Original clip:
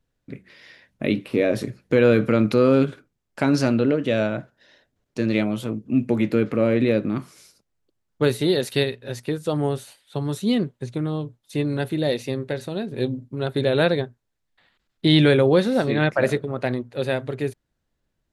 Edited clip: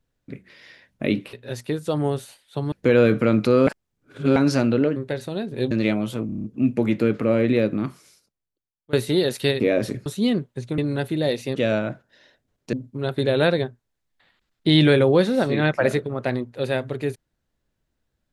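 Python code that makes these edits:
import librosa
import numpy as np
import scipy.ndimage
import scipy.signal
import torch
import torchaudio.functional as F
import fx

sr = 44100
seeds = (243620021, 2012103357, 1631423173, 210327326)

y = fx.edit(x, sr, fx.swap(start_s=1.33, length_s=0.46, other_s=8.92, other_length_s=1.39),
    fx.reverse_span(start_s=2.74, length_s=0.69),
    fx.swap(start_s=4.03, length_s=1.18, other_s=12.36, other_length_s=0.75),
    fx.stutter(start_s=5.76, slice_s=0.03, count=7),
    fx.fade_out_to(start_s=7.15, length_s=1.1, curve='qua', floor_db=-22.0),
    fx.cut(start_s=11.03, length_s=0.56), tone=tone)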